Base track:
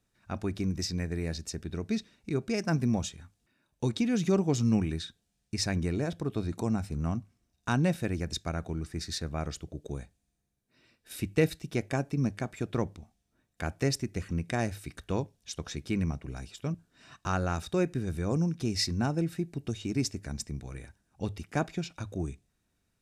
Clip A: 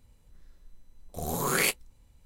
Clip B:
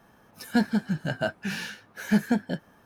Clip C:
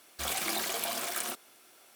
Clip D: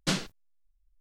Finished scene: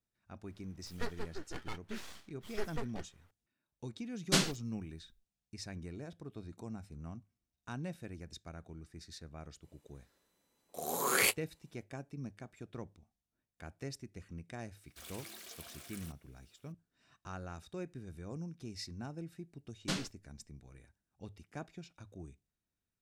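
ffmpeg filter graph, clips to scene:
-filter_complex "[4:a]asplit=2[s0][s1];[0:a]volume=0.178[s2];[2:a]aeval=exprs='abs(val(0))':c=same[s3];[s0]highshelf=f=8100:g=9[s4];[1:a]highpass=320[s5];[3:a]equalizer=f=840:t=o:w=1:g=-8.5[s6];[s3]atrim=end=2.85,asetpts=PTS-STARTPTS,volume=0.237,afade=t=in:d=0.004:c=hsin,afade=t=out:st=2.846:d=0.004:c=hsin,adelay=460[s7];[s4]atrim=end=1,asetpts=PTS-STARTPTS,volume=0.944,afade=t=in:d=0.1,afade=t=out:st=0.9:d=0.1,adelay=187425S[s8];[s5]atrim=end=2.25,asetpts=PTS-STARTPTS,volume=0.708,afade=t=in:d=0.05,afade=t=out:st=2.2:d=0.05,adelay=9600[s9];[s6]atrim=end=1.95,asetpts=PTS-STARTPTS,volume=0.141,afade=t=in:d=0.004:c=hsin,afade=t=out:st=1.946:d=0.004:c=hsin,adelay=14770[s10];[s1]atrim=end=1,asetpts=PTS-STARTPTS,volume=0.398,afade=t=in:d=0.004:c=hsin,afade=t=out:st=0.996:d=0.004:c=hsin,adelay=19810[s11];[s2][s7][s8][s9][s10][s11]amix=inputs=6:normalize=0"

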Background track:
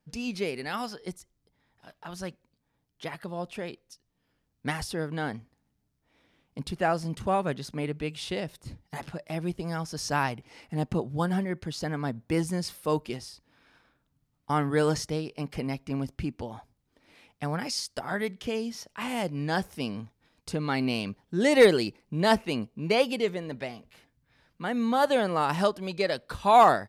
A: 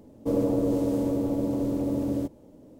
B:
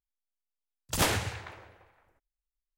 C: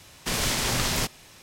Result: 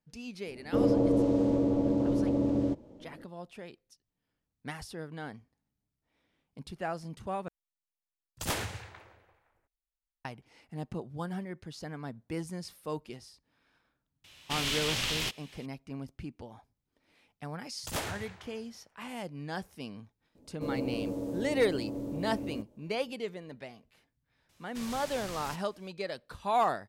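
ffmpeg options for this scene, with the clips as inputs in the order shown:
-filter_complex "[1:a]asplit=2[s0][s1];[2:a]asplit=2[s2][s3];[3:a]asplit=2[s4][s5];[0:a]volume=0.335[s6];[s0]lowpass=4900[s7];[s4]equalizer=f=3000:w=1.2:g=13[s8];[s6]asplit=2[s9][s10];[s9]atrim=end=7.484[s11];[s2]atrim=end=2.77,asetpts=PTS-STARTPTS,volume=0.473[s12];[s10]atrim=start=10.246[s13];[s7]atrim=end=2.79,asetpts=PTS-STARTPTS,volume=0.944,afade=t=in:d=0.004:c=hsin,afade=t=out:st=2.786:d=0.004:c=hsin,adelay=470[s14];[s8]atrim=end=1.42,asetpts=PTS-STARTPTS,volume=0.251,afade=t=in:d=0.004:c=hsin,afade=t=out:st=1.416:d=0.004:c=hsin,adelay=14240[s15];[s3]atrim=end=2.77,asetpts=PTS-STARTPTS,volume=0.355,afade=t=in:d=0.004:c=hsin,afade=t=out:st=2.766:d=0.004:c=hsin,adelay=16940[s16];[s1]atrim=end=2.79,asetpts=PTS-STARTPTS,volume=0.316,afade=t=in:d=0.004:c=hsin,afade=t=out:st=2.786:d=0.004:c=hsin,adelay=20350[s17];[s5]atrim=end=1.42,asetpts=PTS-STARTPTS,volume=0.133,afade=t=in:d=0.004:c=hsin,afade=t=out:st=1.416:d=0.004:c=hsin,adelay=24490[s18];[s11][s12]acrossfade=d=0.004:c1=hsin:c2=hsin[s19];[s19][s13]acrossfade=d=0.004:c1=hsin:c2=hsin[s20];[s20][s14][s15][s16][s17][s18]amix=inputs=6:normalize=0"

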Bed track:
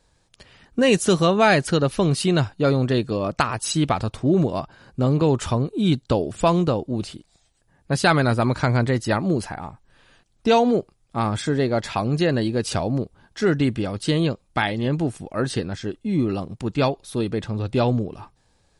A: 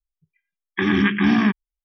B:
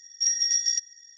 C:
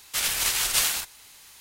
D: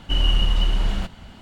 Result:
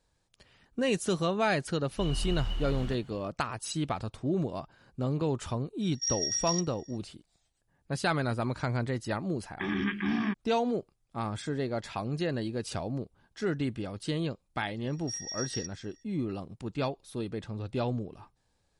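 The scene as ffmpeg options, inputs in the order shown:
-filter_complex "[2:a]asplit=2[s0][s1];[0:a]volume=0.282[s2];[4:a]dynaudnorm=f=220:g=3:m=1.5[s3];[s1]lowpass=f=2400:p=1[s4];[s3]atrim=end=1.41,asetpts=PTS-STARTPTS,volume=0.15,afade=t=in:d=0.004:c=hsin,afade=t=out:st=1.406:d=0.004:c=hsin,adelay=1890[s5];[s0]atrim=end=1.17,asetpts=PTS-STARTPTS,volume=0.422,afade=t=in:d=0.004:c=hsin,afade=t=out:st=1.166:d=0.004:c=hsin,adelay=256221S[s6];[1:a]atrim=end=1.84,asetpts=PTS-STARTPTS,volume=0.237,afade=t=in:d=0.004:c=hsin,afade=t=out:st=1.836:d=0.004:c=hsin,adelay=388962S[s7];[s4]atrim=end=1.17,asetpts=PTS-STARTPTS,volume=0.473,afade=t=in:d=0.004:c=hsin,afade=t=out:st=1.166:d=0.004:c=hsin,adelay=14870[s8];[s2][s5][s6][s7][s8]amix=inputs=5:normalize=0"

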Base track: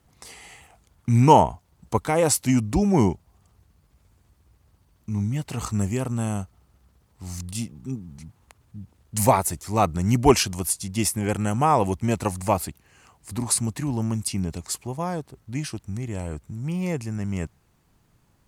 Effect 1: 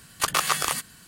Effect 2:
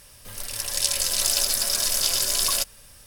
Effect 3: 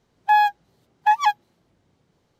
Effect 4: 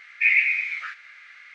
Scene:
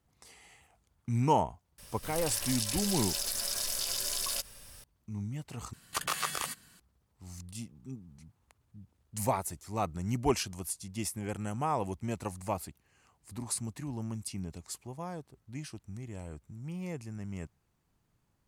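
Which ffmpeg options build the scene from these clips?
-filter_complex "[0:a]volume=0.251[s0];[2:a]acompressor=threshold=0.0447:ratio=6:attack=3.2:release=140:knee=1:detection=peak[s1];[1:a]acontrast=24[s2];[s0]asplit=2[s3][s4];[s3]atrim=end=5.734[s5];[s2]atrim=end=1.07,asetpts=PTS-STARTPTS,volume=0.2[s6];[s4]atrim=start=6.796[s7];[s1]atrim=end=3.06,asetpts=PTS-STARTPTS,volume=0.75,afade=t=in:d=0.004:c=hsin,afade=t=out:st=3.056:d=0.004:c=hsin,adelay=1780[s8];[s5][s6]acrossfade=d=0.004:c1=hsin:c2=hsin[s9];[s9][s7]acrossfade=d=0.004:c1=hsin:c2=hsin[s10];[s10][s8]amix=inputs=2:normalize=0"

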